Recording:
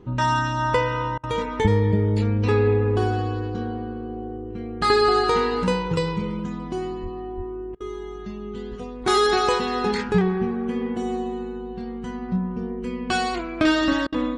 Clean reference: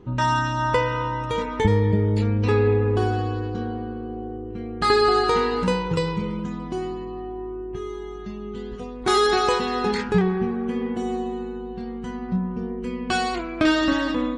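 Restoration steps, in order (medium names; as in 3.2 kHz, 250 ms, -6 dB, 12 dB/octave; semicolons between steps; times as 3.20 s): 7.02–7.14 s: high-pass 140 Hz 24 dB/octave; 7.36–7.48 s: high-pass 140 Hz 24 dB/octave; interpolate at 1.18/7.75/14.07 s, 53 ms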